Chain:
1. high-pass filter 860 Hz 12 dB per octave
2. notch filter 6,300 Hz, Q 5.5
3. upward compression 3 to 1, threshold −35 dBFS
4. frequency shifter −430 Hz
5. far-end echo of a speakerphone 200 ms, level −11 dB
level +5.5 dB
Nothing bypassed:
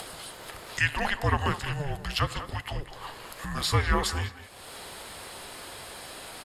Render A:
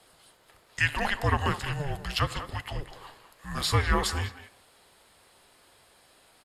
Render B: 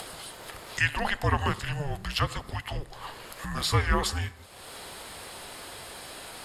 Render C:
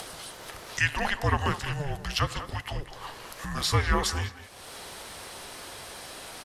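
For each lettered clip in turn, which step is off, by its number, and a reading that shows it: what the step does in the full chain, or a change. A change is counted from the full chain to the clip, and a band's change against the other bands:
3, change in integrated loudness +2.0 LU
5, echo-to-direct ratio −13.0 dB to none audible
2, 8 kHz band +2.0 dB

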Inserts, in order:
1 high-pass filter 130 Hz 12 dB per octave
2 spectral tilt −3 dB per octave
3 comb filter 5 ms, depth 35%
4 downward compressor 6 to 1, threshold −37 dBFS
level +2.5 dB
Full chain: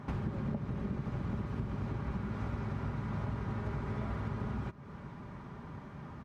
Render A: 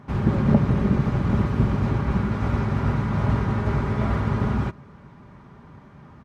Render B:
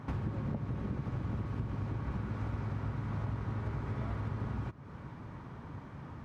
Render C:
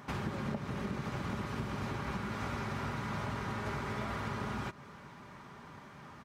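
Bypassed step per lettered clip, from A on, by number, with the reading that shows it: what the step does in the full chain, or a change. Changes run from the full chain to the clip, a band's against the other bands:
4, average gain reduction 11.5 dB
3, 125 Hz band +2.5 dB
2, 125 Hz band −9.0 dB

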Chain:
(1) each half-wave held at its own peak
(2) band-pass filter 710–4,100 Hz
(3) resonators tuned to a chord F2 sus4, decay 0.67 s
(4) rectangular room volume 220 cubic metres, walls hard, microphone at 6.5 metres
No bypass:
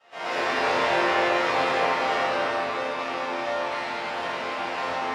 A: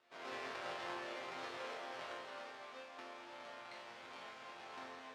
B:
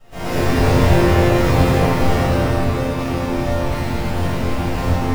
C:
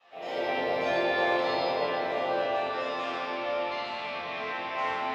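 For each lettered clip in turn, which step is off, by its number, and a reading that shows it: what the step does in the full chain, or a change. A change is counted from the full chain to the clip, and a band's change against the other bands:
4, echo-to-direct ratio 18.5 dB to none audible
2, 125 Hz band +26.0 dB
1, distortion level −5 dB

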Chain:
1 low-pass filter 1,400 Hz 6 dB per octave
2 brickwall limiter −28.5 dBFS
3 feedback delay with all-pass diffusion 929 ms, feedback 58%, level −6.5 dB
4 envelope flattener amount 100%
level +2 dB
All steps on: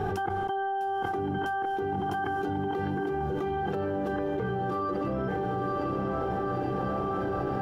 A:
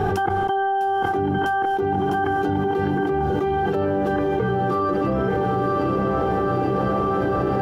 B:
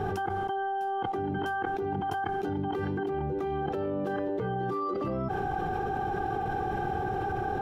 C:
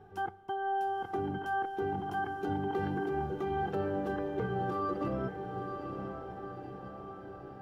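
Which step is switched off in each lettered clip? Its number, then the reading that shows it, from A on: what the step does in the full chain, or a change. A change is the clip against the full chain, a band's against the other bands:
2, average gain reduction 2.0 dB
3, change in integrated loudness −1.0 LU
4, change in momentary loudness spread +11 LU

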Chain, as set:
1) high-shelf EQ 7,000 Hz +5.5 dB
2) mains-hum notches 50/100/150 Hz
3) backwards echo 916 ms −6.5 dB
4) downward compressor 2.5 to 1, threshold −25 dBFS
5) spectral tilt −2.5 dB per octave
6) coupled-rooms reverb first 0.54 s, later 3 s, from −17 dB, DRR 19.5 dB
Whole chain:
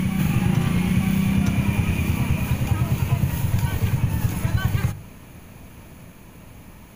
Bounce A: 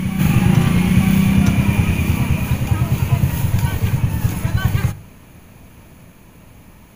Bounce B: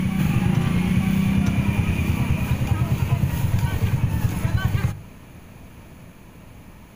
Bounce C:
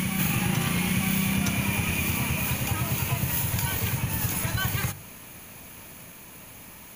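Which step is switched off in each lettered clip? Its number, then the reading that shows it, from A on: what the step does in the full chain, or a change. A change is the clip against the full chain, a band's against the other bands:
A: 4, average gain reduction 3.5 dB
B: 1, 8 kHz band −3.0 dB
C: 5, 8 kHz band +9.0 dB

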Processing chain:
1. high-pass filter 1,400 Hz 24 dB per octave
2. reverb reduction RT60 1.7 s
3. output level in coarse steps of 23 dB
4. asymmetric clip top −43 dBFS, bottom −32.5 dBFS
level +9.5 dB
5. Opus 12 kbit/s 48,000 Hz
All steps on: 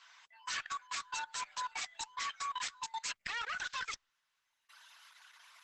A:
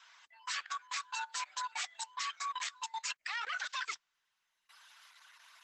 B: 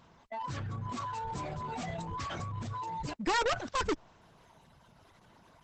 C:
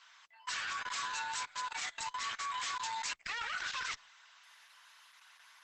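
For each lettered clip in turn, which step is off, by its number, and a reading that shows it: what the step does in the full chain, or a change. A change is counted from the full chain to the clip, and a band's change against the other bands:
4, distortion level −17 dB
1, 250 Hz band +28.5 dB
2, change in crest factor −4.5 dB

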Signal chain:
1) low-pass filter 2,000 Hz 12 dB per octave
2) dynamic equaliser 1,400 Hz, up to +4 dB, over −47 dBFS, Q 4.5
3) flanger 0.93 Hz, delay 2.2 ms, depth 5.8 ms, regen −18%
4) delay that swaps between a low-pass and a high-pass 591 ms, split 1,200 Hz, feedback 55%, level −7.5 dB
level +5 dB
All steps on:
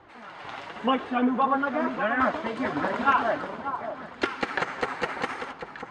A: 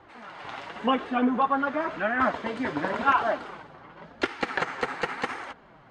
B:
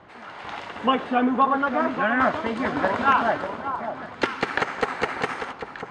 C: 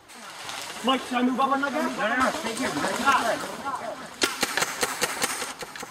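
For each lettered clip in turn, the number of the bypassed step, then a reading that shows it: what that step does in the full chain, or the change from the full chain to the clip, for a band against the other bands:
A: 4, echo-to-direct ratio −9.5 dB to none audible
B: 3, change in integrated loudness +3.5 LU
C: 1, 4 kHz band +10.0 dB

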